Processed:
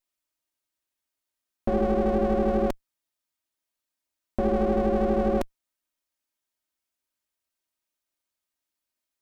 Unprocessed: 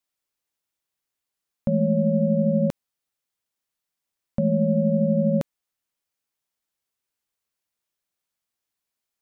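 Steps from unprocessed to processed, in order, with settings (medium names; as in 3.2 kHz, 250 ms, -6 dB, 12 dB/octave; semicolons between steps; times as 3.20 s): comb filter that takes the minimum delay 3.2 ms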